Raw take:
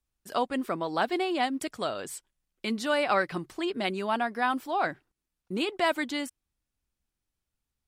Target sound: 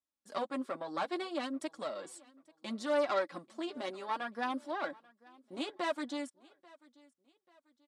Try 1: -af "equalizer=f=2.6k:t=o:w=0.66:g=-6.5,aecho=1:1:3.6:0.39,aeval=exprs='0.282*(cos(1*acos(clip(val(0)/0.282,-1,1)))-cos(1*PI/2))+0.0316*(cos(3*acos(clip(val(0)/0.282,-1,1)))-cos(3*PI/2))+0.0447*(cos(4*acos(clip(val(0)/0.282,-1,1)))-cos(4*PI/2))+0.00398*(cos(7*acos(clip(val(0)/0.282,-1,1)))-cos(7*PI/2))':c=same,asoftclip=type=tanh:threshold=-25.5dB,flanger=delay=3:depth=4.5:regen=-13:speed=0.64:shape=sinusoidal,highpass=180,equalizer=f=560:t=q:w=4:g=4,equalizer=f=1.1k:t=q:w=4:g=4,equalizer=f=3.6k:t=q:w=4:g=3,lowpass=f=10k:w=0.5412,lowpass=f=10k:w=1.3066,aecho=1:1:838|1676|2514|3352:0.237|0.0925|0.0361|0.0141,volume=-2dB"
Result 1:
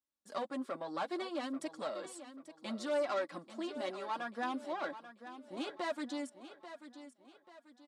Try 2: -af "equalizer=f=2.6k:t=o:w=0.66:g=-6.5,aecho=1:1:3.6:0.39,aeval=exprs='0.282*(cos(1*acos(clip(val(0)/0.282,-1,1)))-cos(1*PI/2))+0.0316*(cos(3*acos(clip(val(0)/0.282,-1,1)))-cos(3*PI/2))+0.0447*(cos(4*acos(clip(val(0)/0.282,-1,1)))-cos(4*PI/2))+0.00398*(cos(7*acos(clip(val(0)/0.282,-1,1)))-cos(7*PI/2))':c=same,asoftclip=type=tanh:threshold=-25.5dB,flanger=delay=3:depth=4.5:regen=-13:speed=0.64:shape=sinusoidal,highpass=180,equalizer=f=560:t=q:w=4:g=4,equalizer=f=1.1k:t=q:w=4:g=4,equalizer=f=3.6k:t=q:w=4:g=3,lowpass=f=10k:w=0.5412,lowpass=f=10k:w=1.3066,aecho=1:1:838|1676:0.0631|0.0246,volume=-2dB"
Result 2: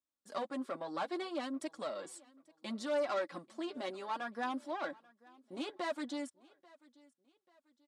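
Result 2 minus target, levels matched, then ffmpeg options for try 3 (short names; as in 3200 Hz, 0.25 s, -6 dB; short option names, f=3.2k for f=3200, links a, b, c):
soft clip: distortion +9 dB
-af "equalizer=f=2.6k:t=o:w=0.66:g=-6.5,aecho=1:1:3.6:0.39,aeval=exprs='0.282*(cos(1*acos(clip(val(0)/0.282,-1,1)))-cos(1*PI/2))+0.0316*(cos(3*acos(clip(val(0)/0.282,-1,1)))-cos(3*PI/2))+0.0447*(cos(4*acos(clip(val(0)/0.282,-1,1)))-cos(4*PI/2))+0.00398*(cos(7*acos(clip(val(0)/0.282,-1,1)))-cos(7*PI/2))':c=same,asoftclip=type=tanh:threshold=-17dB,flanger=delay=3:depth=4.5:regen=-13:speed=0.64:shape=sinusoidal,highpass=180,equalizer=f=560:t=q:w=4:g=4,equalizer=f=1.1k:t=q:w=4:g=4,equalizer=f=3.6k:t=q:w=4:g=3,lowpass=f=10k:w=0.5412,lowpass=f=10k:w=1.3066,aecho=1:1:838|1676:0.0631|0.0246,volume=-2dB"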